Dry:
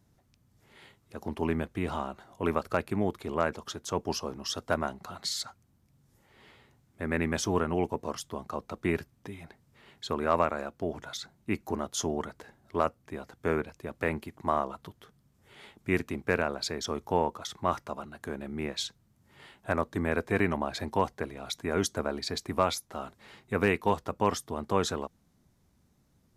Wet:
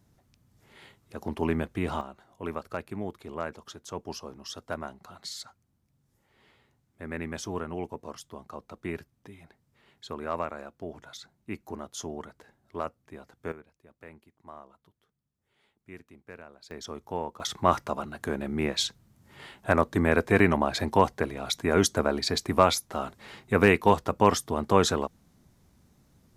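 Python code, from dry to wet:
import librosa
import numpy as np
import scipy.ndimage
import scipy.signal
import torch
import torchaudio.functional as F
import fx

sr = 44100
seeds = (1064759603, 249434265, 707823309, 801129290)

y = fx.gain(x, sr, db=fx.steps((0.0, 2.0), (2.01, -6.0), (13.52, -18.5), (16.71, -6.0), (17.4, 6.0)))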